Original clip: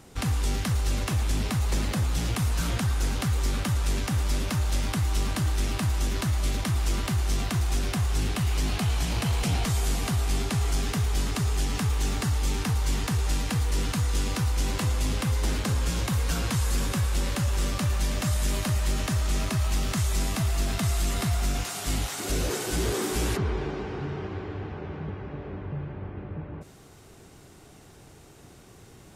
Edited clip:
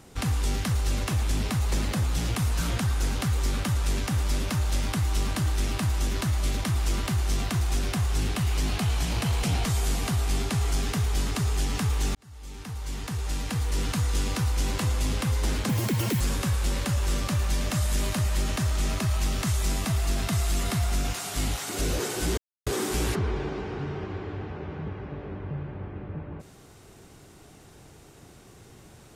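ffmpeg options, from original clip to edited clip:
-filter_complex "[0:a]asplit=5[s0][s1][s2][s3][s4];[s0]atrim=end=12.15,asetpts=PTS-STARTPTS,afade=t=out:st=12.146:d=0.004:c=hsin[s5];[s1]atrim=start=12.15:end=15.694,asetpts=PTS-STARTPTS,afade=t=in:d=1.79[s6];[s2]atrim=start=15.69:end=16.71,asetpts=PTS-STARTPTS,asetrate=87318,aresample=44100,atrim=end_sample=22718,asetpts=PTS-STARTPTS[s7];[s3]atrim=start=16.706:end=22.88,asetpts=PTS-STARTPTS,afade=t=out:st=6.17:d=0.004:c=hsin,apad=pad_dur=0.29[s8];[s4]atrim=start=22.88,asetpts=PTS-STARTPTS,afade=t=in:d=0.004:c=hsin[s9];[s5][s6]concat=n=2:v=0:a=1[s10];[s10][s7]acrossfade=d=0.004:c1=hsin:c2=hsin[s11];[s8][s9]concat=n=2:v=0:a=1[s12];[s11][s12]acrossfade=d=0.004:c1=hsin:c2=hsin"

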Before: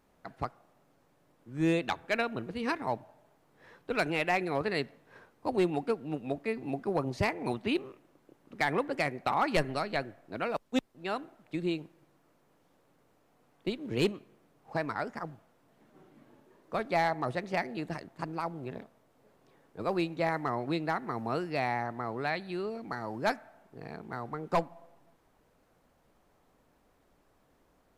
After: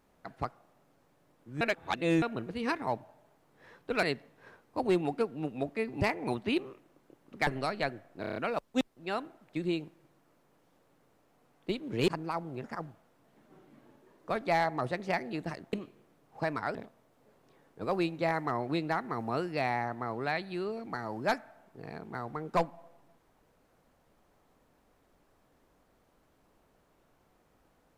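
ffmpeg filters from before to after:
-filter_complex "[0:a]asplit=15[s0][s1][s2][s3][s4][s5][s6][s7][s8][s9][s10][s11][s12][s13][s14];[s0]atrim=end=1.612[s15];[s1]atrim=start=1.608:end=2.222,asetpts=PTS-STARTPTS,areverse[s16];[s2]atrim=start=2.218:end=4.032[s17];[s3]atrim=start=4.718:end=6.702[s18];[s4]atrim=start=7.198:end=8.662[s19];[s5]atrim=start=9.598:end=10.372[s20];[s6]atrim=start=10.338:end=10.372[s21];[s7]atrim=start=10.338:end=10.372[s22];[s8]atrim=start=10.338:end=10.372[s23];[s9]atrim=start=10.338:end=10.372[s24];[s10]atrim=start=10.338:end=14.062[s25];[s11]atrim=start=18.168:end=18.732[s26];[s12]atrim=start=15.078:end=18.172[s27];[s13]atrim=start=14.058:end=15.082[s28];[s14]atrim=start=18.728[s29];[s15][s16]acrossfade=d=0.004:c1=hsin:c2=hsin[s30];[s30][s17]acrossfade=d=0.004:c1=hsin:c2=hsin[s31];[s31][s18]acrossfade=d=0.004:c1=hsin:c2=hsin[s32];[s32][s19]acrossfade=d=0.004:c1=hsin:c2=hsin[s33];[s33][s20]acrossfade=d=0.004:c1=hsin:c2=hsin[s34];[s34][s21]acrossfade=d=0.004:c1=hsin:c2=hsin[s35];[s35][s22]acrossfade=d=0.004:c1=hsin:c2=hsin[s36];[s36][s23]acrossfade=d=0.004:c1=hsin:c2=hsin[s37];[s37][s24]acrossfade=d=0.004:c1=hsin:c2=hsin[s38];[s38][s25]acrossfade=d=0.004:c1=hsin:c2=hsin[s39];[s39][s26]acrossfade=d=0.004:c1=hsin:c2=hsin[s40];[s40][s27]acrossfade=d=0.004:c1=hsin:c2=hsin[s41];[s41][s28]acrossfade=d=0.004:c1=hsin:c2=hsin[s42];[s42][s29]acrossfade=d=0.004:c1=hsin:c2=hsin"

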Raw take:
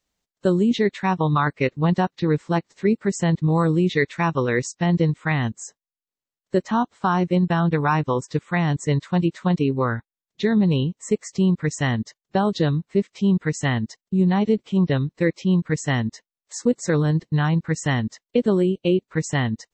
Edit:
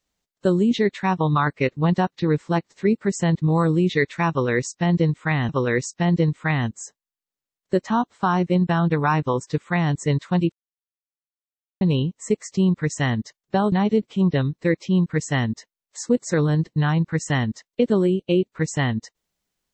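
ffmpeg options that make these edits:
-filter_complex "[0:a]asplit=5[s0][s1][s2][s3][s4];[s0]atrim=end=5.492[s5];[s1]atrim=start=4.298:end=9.33,asetpts=PTS-STARTPTS,afade=t=out:st=5.028:d=0.004:c=hsin[s6];[s2]atrim=start=9.33:end=10.62,asetpts=PTS-STARTPTS,volume=0[s7];[s3]atrim=start=10.62:end=12.532,asetpts=PTS-STARTPTS,afade=t=in:d=0.004:c=hsin[s8];[s4]atrim=start=14.278[s9];[s6][s7][s8]concat=n=3:v=0:a=1[s10];[s5][s10]acrossfade=d=0.004:c1=hsin:c2=hsin[s11];[s11][s9]acrossfade=d=0.004:c1=hsin:c2=hsin"

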